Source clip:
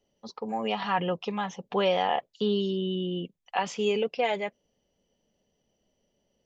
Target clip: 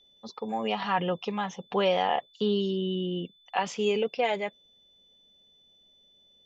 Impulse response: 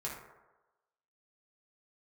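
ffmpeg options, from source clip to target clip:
-af "aeval=exprs='val(0)+0.00112*sin(2*PI*3500*n/s)':c=same"

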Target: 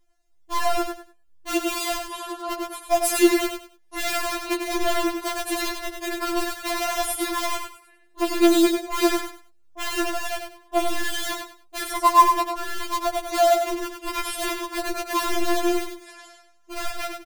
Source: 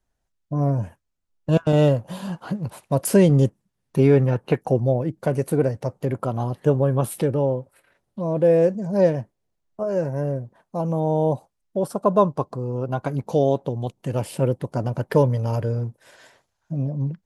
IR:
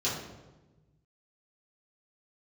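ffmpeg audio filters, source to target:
-filter_complex "[0:a]asplit=2[s0][s1];[s1]aeval=exprs='(mod(10.6*val(0)+1,2)-1)/10.6':c=same,volume=0.708[s2];[s0][s2]amix=inputs=2:normalize=0,aecho=1:1:97|194|291:0.501|0.12|0.0289,afftfilt=real='re*4*eq(mod(b,16),0)':imag='im*4*eq(mod(b,16),0)':win_size=2048:overlap=0.75,volume=1.41"

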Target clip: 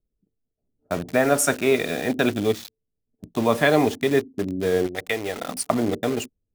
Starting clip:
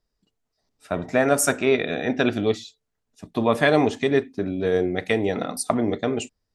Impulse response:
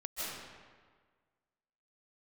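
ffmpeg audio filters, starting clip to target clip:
-filter_complex "[0:a]asplit=3[s0][s1][s2];[s0]afade=t=out:st=4.86:d=0.02[s3];[s1]equalizer=f=180:w=0.59:g=-12,afade=t=in:st=4.86:d=0.02,afade=t=out:st=5.47:d=0.02[s4];[s2]afade=t=in:st=5.47:d=0.02[s5];[s3][s4][s5]amix=inputs=3:normalize=0,acrossover=split=530[s6][s7];[s7]acrusher=bits=5:mix=0:aa=0.000001[s8];[s6][s8]amix=inputs=2:normalize=0"

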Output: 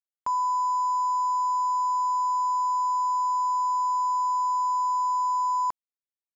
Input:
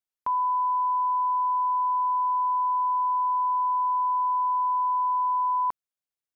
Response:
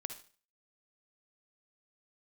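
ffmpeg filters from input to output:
-af "aeval=exprs='sgn(val(0))*max(abs(val(0))-0.00299,0)':c=same,aeval=exprs='0.0841*(cos(1*acos(clip(val(0)/0.0841,-1,1)))-cos(1*PI/2))+0.000531*(cos(4*acos(clip(val(0)/0.0841,-1,1)))-cos(4*PI/2))+0.000531*(cos(6*acos(clip(val(0)/0.0841,-1,1)))-cos(6*PI/2))+0.00422*(cos(7*acos(clip(val(0)/0.0841,-1,1)))-cos(7*PI/2))':c=same"

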